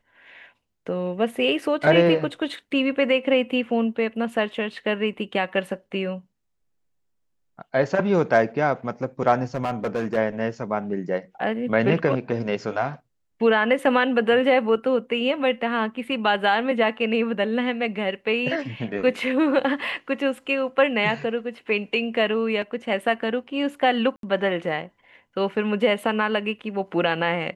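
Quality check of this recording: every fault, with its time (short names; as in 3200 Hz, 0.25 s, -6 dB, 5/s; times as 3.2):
9.55–10.18 clipped -20 dBFS
24.16–24.23 gap 72 ms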